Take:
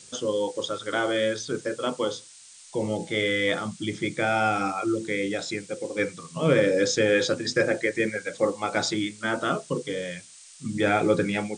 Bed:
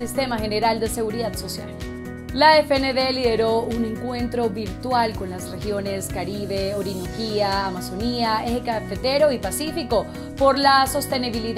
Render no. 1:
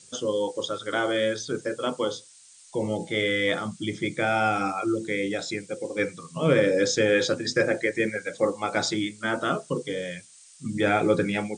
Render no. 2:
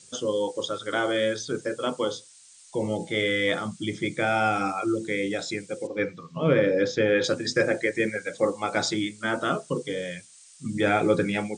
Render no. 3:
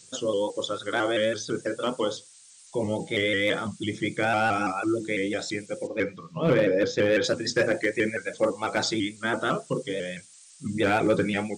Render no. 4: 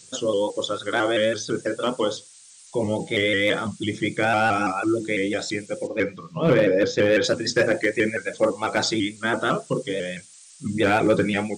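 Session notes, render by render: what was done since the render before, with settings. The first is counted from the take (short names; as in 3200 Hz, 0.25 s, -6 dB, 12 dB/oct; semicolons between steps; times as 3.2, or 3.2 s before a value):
denoiser 6 dB, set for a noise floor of -49 dBFS
5.87–7.24 air absorption 180 m
hard clip -15 dBFS, distortion -22 dB; shaped vibrato saw up 6 Hz, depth 100 cents
gain +3.5 dB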